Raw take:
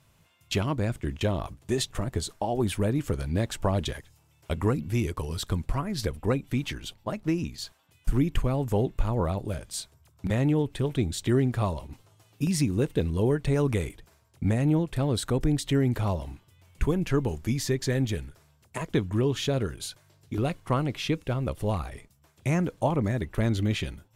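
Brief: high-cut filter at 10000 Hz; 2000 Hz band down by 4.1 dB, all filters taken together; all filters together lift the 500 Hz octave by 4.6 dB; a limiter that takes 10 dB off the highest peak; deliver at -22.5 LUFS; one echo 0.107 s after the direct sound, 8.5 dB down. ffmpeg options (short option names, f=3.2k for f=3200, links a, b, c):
-af "lowpass=10k,equalizer=f=500:t=o:g=6,equalizer=f=2k:t=o:g=-5.5,alimiter=limit=-20dB:level=0:latency=1,aecho=1:1:107:0.376,volume=7.5dB"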